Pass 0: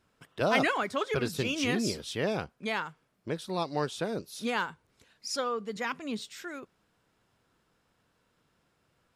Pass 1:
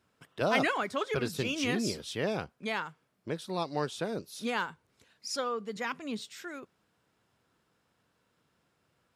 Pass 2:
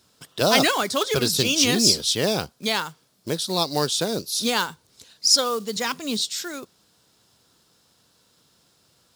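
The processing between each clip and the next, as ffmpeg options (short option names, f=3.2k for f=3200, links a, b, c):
-af "highpass=66,volume=-1.5dB"
-af "acrusher=bits=6:mode=log:mix=0:aa=0.000001,highshelf=f=3.1k:t=q:w=1.5:g=10,volume=8.5dB"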